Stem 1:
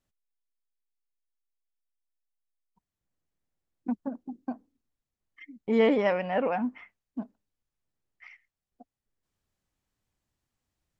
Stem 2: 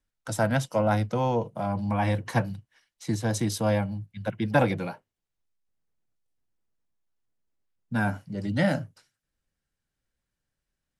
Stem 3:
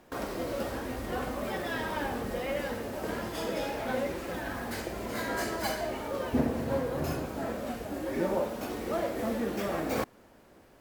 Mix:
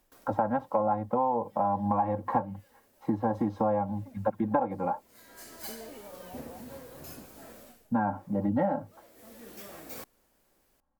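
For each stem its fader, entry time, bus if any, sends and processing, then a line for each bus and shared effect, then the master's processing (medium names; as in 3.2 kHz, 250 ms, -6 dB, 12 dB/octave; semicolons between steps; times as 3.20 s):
-14.0 dB, 0.00 s, no send, steep low-pass 1.3 kHz; compression, threshold -31 dBFS, peak gain reduction 12 dB
+2.5 dB, 0.00 s, no send, resonant low-pass 920 Hz, resonance Q 4.3; comb 3.7 ms, depth 79%
-2.5 dB, 0.00 s, no send, pre-emphasis filter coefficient 0.8; auto duck -16 dB, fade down 0.30 s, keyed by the second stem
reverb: none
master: compression 8:1, threshold -24 dBFS, peak gain reduction 18.5 dB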